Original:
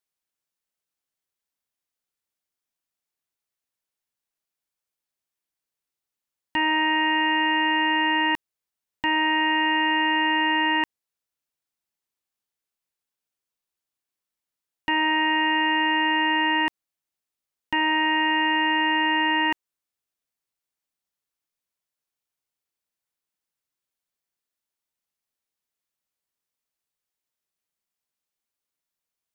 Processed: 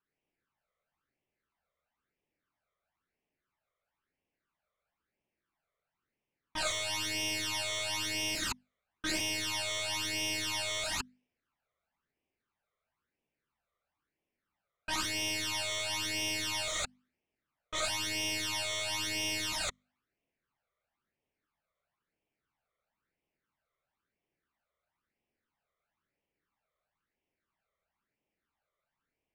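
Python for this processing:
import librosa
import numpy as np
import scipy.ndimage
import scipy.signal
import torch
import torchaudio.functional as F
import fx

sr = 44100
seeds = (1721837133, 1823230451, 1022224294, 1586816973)

p1 = fx.low_shelf(x, sr, hz=93.0, db=-6.0)
p2 = fx.hum_notches(p1, sr, base_hz=50, count=5)
p3 = fx.rev_gated(p2, sr, seeds[0], gate_ms=180, shape='rising', drr_db=0.5)
p4 = fx.over_compress(p3, sr, threshold_db=-28.0, ratio=-1.0)
p5 = p3 + F.gain(torch.from_numpy(p4), -1.0).numpy()
p6 = (np.mod(10.0 ** (22.5 / 20.0) * p5 + 1.0, 2.0) - 1.0) / 10.0 ** (22.5 / 20.0)
p7 = fx.phaser_stages(p6, sr, stages=12, low_hz=270.0, high_hz=1400.0, hz=1.0, feedback_pct=25)
y = fx.env_lowpass(p7, sr, base_hz=1600.0, full_db=-22.5)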